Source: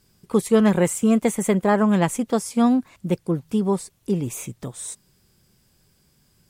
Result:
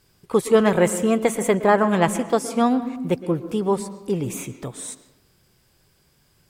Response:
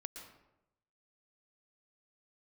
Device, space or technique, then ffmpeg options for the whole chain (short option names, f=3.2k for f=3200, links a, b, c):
filtered reverb send: -filter_complex "[0:a]asplit=2[a][b];[b]highpass=f=200:w=0.5412,highpass=f=200:w=1.3066,lowpass=4.6k[c];[1:a]atrim=start_sample=2205[d];[c][d]afir=irnorm=-1:irlink=0,volume=-0.5dB[e];[a][e]amix=inputs=2:normalize=0"